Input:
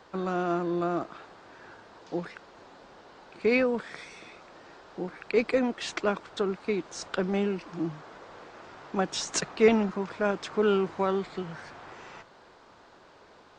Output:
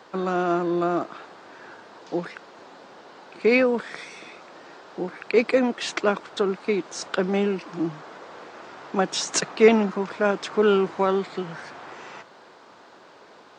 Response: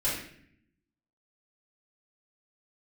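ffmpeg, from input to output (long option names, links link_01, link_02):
-af "highpass=170,volume=5.5dB"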